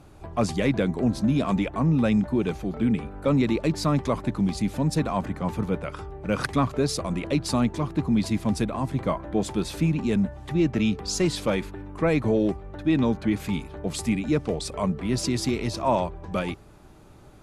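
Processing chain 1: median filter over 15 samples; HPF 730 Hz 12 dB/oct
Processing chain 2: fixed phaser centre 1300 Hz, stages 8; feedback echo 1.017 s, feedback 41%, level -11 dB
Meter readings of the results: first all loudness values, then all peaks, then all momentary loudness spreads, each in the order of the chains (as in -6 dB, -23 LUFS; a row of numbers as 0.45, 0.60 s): -36.5, -30.5 LUFS; -14.5, -13.0 dBFS; 10, 6 LU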